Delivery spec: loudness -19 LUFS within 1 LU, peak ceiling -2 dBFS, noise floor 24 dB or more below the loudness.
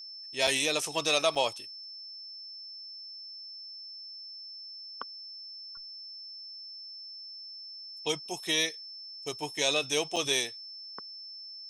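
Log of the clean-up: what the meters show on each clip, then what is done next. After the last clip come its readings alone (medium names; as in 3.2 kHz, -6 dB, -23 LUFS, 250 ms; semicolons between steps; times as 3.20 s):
dropouts 3; longest dropout 5.5 ms; steady tone 5.3 kHz; tone level -42 dBFS; loudness -33.0 LUFS; peak level -12.5 dBFS; loudness target -19.0 LUFS
-> interpolate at 0.47/1.35/10.16 s, 5.5 ms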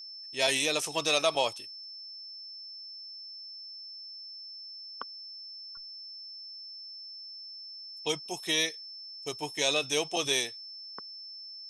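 dropouts 0; steady tone 5.3 kHz; tone level -42 dBFS
-> band-stop 5.3 kHz, Q 30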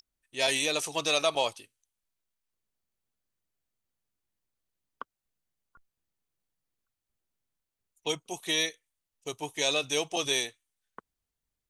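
steady tone not found; loudness -29.0 LUFS; peak level -13.0 dBFS; loudness target -19.0 LUFS
-> trim +10 dB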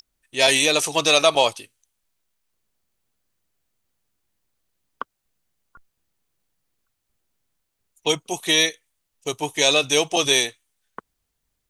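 loudness -19.0 LUFS; peak level -3.0 dBFS; noise floor -77 dBFS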